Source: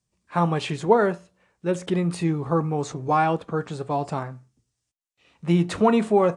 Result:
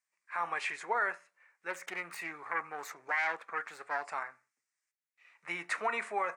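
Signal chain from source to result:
0:01.70–0:04.05: phase distortion by the signal itself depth 0.28 ms
high-pass filter 1,400 Hz 12 dB per octave
high shelf with overshoot 2,600 Hz −7 dB, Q 3
brickwall limiter −21.5 dBFS, peak gain reduction 10 dB

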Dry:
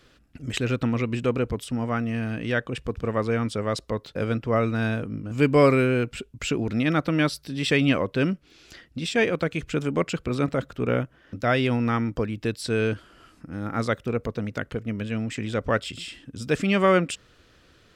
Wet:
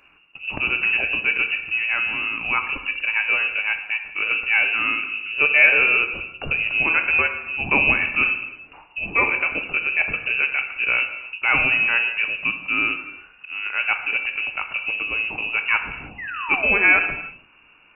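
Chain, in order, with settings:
voice inversion scrambler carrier 2,800 Hz
sound drawn into the spectrogram fall, 0:16.18–0:16.93, 280–2,100 Hz −34 dBFS
reverb whose tail is shaped and stops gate 360 ms falling, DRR 5.5 dB
level +2 dB

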